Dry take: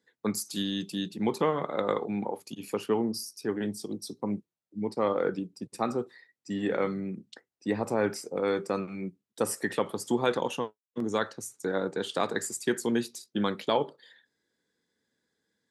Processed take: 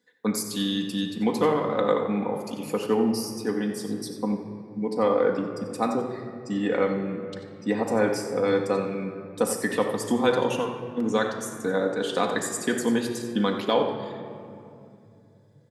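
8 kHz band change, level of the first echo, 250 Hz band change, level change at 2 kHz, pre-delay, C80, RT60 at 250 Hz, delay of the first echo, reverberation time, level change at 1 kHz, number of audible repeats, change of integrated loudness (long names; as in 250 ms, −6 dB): +3.5 dB, −11.0 dB, +5.5 dB, +4.5 dB, 4 ms, 7.0 dB, 4.4 s, 91 ms, 2.7 s, +4.5 dB, 1, +5.0 dB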